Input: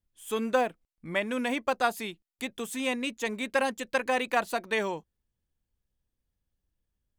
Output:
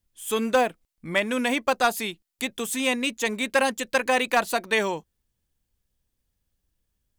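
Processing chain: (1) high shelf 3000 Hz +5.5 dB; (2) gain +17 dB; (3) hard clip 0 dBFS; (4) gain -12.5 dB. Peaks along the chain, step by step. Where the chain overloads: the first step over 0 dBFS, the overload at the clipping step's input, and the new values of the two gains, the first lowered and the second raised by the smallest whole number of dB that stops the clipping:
-12.0, +5.0, 0.0, -12.5 dBFS; step 2, 5.0 dB; step 2 +12 dB, step 4 -7.5 dB

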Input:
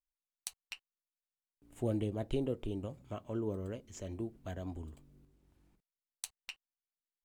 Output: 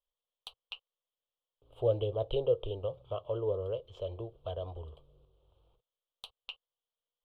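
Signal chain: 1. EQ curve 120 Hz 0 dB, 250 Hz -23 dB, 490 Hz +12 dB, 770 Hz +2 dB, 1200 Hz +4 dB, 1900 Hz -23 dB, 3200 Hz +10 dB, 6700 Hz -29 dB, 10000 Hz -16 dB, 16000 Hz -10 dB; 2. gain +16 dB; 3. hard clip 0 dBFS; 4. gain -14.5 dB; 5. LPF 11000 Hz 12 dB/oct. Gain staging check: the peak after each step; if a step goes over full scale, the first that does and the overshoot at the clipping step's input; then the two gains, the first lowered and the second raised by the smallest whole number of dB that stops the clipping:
-18.0, -2.0, -2.0, -16.5, -16.5 dBFS; no overload

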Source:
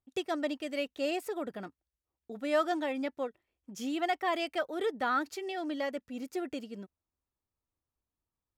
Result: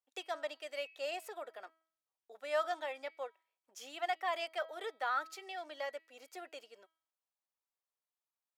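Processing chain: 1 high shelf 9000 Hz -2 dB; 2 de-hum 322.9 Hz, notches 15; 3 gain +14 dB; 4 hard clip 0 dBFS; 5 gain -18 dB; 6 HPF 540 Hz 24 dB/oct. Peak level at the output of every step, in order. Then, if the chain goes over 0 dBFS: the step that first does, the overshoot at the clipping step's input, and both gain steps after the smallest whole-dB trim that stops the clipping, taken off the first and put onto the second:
-18.5, -18.5, -4.5, -4.5, -22.5, -23.5 dBFS; no overload

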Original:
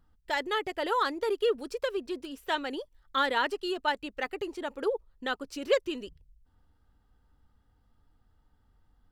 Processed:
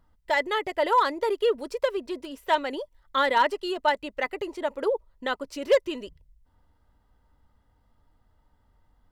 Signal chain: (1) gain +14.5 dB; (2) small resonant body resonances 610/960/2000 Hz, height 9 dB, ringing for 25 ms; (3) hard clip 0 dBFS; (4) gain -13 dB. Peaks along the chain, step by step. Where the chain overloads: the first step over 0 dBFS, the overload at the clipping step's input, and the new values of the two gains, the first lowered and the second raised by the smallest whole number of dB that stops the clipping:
+2.0, +6.5, 0.0, -13.0 dBFS; step 1, 6.5 dB; step 1 +7.5 dB, step 4 -6 dB

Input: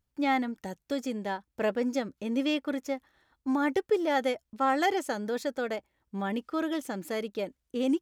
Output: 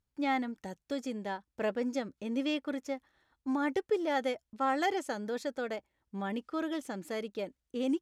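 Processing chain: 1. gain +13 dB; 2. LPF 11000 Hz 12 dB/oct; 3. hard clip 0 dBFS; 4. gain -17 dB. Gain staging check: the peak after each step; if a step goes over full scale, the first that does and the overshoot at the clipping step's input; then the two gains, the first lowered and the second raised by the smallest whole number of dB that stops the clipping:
-2.0, -2.0, -2.0, -19.0 dBFS; no overload

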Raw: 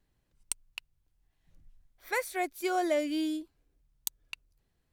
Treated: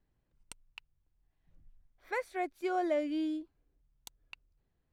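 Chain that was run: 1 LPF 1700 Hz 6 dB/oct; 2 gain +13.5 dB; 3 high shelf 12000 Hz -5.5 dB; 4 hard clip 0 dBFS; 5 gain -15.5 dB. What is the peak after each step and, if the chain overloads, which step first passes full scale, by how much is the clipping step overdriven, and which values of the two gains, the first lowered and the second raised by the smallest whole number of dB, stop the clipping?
-19.0, -5.5, -5.5, -5.5, -21.0 dBFS; no overload

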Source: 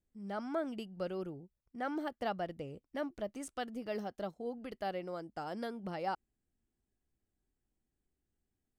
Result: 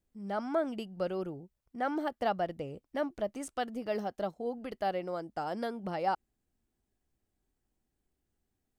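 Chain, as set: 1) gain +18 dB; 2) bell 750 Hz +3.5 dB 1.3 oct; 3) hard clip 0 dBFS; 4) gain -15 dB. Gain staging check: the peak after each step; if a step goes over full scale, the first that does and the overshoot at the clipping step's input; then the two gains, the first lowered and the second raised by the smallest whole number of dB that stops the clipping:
-5.5, -3.5, -3.5, -18.5 dBFS; no overload

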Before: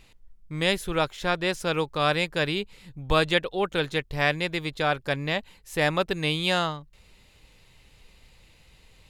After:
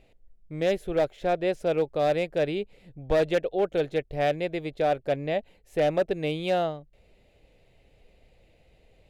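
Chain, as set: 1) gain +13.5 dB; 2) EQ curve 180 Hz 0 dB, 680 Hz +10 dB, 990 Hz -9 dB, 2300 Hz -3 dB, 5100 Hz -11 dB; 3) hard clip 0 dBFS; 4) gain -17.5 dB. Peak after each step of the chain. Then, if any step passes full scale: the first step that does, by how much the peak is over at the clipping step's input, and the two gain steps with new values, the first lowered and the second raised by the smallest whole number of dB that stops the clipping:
+5.5, +7.5, 0.0, -17.5 dBFS; step 1, 7.5 dB; step 1 +5.5 dB, step 4 -9.5 dB

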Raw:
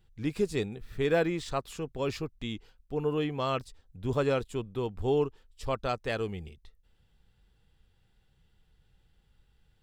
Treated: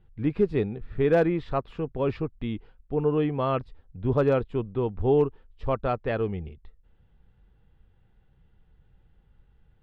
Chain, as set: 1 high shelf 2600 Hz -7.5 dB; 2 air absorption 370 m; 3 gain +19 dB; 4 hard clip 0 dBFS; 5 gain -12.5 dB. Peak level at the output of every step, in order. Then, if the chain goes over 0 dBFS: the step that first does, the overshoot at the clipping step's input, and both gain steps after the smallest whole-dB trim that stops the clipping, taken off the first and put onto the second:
-14.5, -15.5, +3.5, 0.0, -12.5 dBFS; step 3, 3.5 dB; step 3 +15 dB, step 5 -8.5 dB

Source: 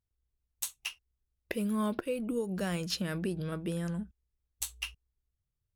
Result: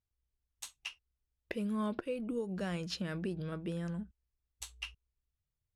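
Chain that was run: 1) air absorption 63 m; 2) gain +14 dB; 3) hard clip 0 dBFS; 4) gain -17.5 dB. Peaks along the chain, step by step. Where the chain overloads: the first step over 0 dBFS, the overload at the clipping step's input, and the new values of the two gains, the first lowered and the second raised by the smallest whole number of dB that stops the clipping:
-18.0, -4.0, -4.0, -21.5 dBFS; no overload

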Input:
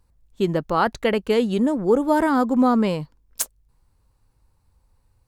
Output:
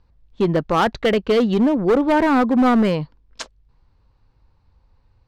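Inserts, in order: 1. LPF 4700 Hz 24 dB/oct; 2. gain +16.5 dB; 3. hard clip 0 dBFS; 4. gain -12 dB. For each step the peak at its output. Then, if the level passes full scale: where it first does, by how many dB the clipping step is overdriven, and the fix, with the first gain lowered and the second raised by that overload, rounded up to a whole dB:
-7.0, +9.5, 0.0, -12.0 dBFS; step 2, 9.5 dB; step 2 +6.5 dB, step 4 -2 dB

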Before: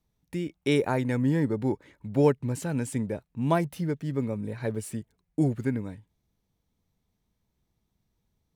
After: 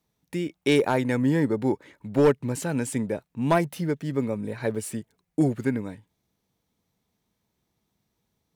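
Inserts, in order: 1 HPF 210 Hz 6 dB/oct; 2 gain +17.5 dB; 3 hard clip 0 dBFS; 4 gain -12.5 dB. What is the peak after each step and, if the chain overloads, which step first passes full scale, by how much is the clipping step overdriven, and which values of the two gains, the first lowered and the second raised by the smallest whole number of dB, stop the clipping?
-10.0, +7.5, 0.0, -12.5 dBFS; step 2, 7.5 dB; step 2 +9.5 dB, step 4 -4.5 dB

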